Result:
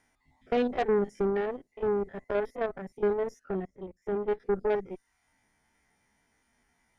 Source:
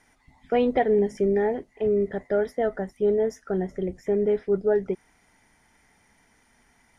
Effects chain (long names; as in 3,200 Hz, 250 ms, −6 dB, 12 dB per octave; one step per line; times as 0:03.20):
spectrum averaged block by block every 50 ms
reverb reduction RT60 0.53 s
harmonic generator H 6 −19 dB, 7 −28 dB, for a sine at −12 dBFS
0:03.65–0:04.40: expander for the loud parts 1.5 to 1, over −45 dBFS
level −4 dB